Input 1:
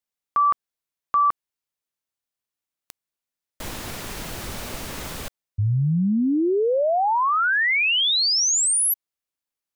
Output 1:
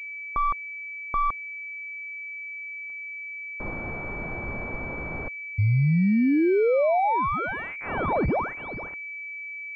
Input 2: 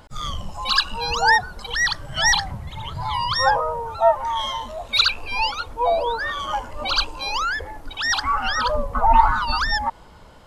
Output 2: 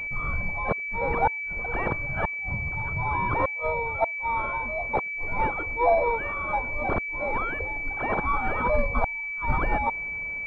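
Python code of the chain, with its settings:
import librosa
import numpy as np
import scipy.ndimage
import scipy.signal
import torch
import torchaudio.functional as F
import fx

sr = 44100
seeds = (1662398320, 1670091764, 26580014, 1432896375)

y = fx.gate_flip(x, sr, shuts_db=-9.0, range_db=-38)
y = fx.pwm(y, sr, carrier_hz=2300.0)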